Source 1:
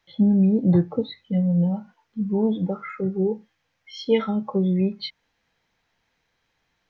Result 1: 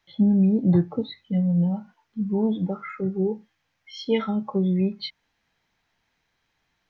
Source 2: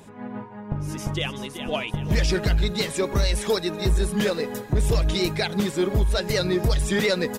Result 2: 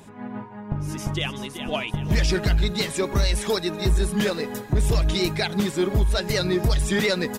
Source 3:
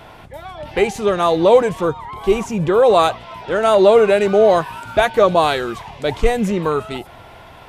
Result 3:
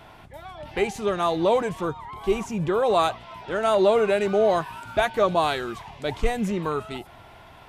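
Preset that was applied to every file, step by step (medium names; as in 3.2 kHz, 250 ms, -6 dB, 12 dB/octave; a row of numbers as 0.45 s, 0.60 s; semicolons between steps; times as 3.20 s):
peaking EQ 500 Hz -5.5 dB 0.3 oct; normalise loudness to -24 LUFS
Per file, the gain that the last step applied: -1.0 dB, +1.0 dB, -6.5 dB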